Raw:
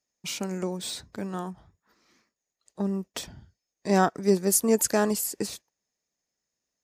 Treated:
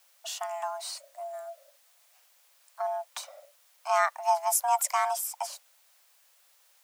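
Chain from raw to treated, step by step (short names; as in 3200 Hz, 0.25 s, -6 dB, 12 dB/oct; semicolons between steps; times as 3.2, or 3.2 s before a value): spectral gain 0.98–2.14, 220–6000 Hz -16 dB; added noise white -60 dBFS; frequency shift +490 Hz; gain -3.5 dB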